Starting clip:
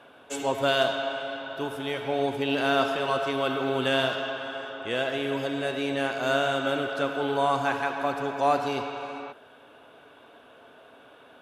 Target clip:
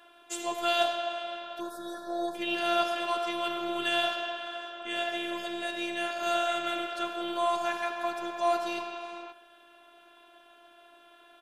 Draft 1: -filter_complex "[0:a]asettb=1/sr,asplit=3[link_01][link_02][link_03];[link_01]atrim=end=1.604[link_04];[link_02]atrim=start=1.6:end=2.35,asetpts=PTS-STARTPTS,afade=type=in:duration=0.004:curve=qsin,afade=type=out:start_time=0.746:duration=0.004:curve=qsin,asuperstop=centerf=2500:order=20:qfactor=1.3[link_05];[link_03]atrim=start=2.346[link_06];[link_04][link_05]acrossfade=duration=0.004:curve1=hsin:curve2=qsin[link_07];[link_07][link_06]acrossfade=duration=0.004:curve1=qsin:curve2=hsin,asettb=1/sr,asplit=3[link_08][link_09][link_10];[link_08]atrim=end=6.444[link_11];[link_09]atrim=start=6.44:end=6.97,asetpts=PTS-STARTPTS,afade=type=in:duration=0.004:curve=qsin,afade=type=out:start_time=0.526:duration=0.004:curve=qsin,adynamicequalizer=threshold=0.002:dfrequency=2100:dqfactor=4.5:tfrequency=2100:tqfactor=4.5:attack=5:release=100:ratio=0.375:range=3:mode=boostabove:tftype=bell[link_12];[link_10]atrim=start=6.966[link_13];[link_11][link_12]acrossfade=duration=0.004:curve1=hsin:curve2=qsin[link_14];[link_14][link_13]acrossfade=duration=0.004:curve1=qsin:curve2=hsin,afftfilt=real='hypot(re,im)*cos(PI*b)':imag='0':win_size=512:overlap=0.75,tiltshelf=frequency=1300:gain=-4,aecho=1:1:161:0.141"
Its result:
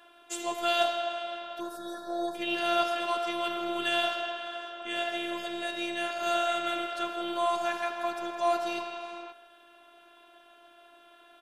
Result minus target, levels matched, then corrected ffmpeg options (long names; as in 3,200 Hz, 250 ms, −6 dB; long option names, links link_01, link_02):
echo 64 ms late
-filter_complex "[0:a]asettb=1/sr,asplit=3[link_01][link_02][link_03];[link_01]atrim=end=1.604[link_04];[link_02]atrim=start=1.6:end=2.35,asetpts=PTS-STARTPTS,afade=type=in:duration=0.004:curve=qsin,afade=type=out:start_time=0.746:duration=0.004:curve=qsin,asuperstop=centerf=2500:order=20:qfactor=1.3[link_05];[link_03]atrim=start=2.346[link_06];[link_04][link_05]acrossfade=duration=0.004:curve1=hsin:curve2=qsin[link_07];[link_07][link_06]acrossfade=duration=0.004:curve1=qsin:curve2=hsin,asettb=1/sr,asplit=3[link_08][link_09][link_10];[link_08]atrim=end=6.444[link_11];[link_09]atrim=start=6.44:end=6.97,asetpts=PTS-STARTPTS,afade=type=in:duration=0.004:curve=qsin,afade=type=out:start_time=0.526:duration=0.004:curve=qsin,adynamicequalizer=threshold=0.002:dfrequency=2100:dqfactor=4.5:tfrequency=2100:tqfactor=4.5:attack=5:release=100:ratio=0.375:range=3:mode=boostabove:tftype=bell[link_12];[link_10]atrim=start=6.966[link_13];[link_11][link_12]acrossfade=duration=0.004:curve1=hsin:curve2=qsin[link_14];[link_14][link_13]acrossfade=duration=0.004:curve1=qsin:curve2=hsin,afftfilt=real='hypot(re,im)*cos(PI*b)':imag='0':win_size=512:overlap=0.75,tiltshelf=frequency=1300:gain=-4,aecho=1:1:97:0.141"